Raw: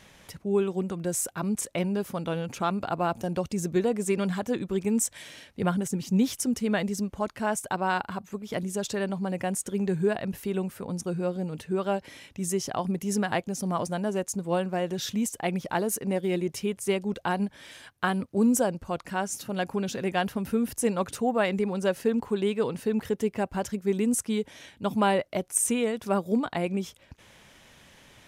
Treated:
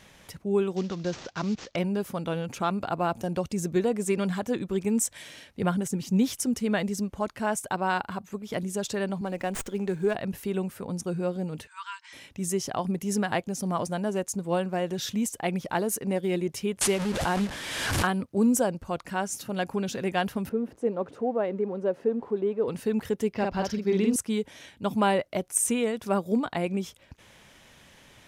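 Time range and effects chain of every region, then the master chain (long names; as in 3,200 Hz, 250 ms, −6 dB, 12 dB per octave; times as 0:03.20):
0:00.76–0:01.76: variable-slope delta modulation 32 kbit/s + high-shelf EQ 3,300 Hz +9 dB
0:09.21–0:10.15: high-pass filter 210 Hz + windowed peak hold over 3 samples
0:11.67–0:12.13: linear-phase brick-wall band-pass 880–9,100 Hz + notch filter 1,200 Hz, Q 27
0:16.81–0:18.07: linear delta modulator 64 kbit/s, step −30.5 dBFS + high-shelf EQ 7,800 Hz −6 dB + background raised ahead of every attack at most 34 dB per second
0:20.49–0:22.68: converter with a step at zero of −40 dBFS + resonant band-pass 430 Hz, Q 1.1
0:23.33–0:24.16: high shelf with overshoot 6,500 Hz −8.5 dB, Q 3 + double-tracking delay 48 ms −3 dB
whole clip: no processing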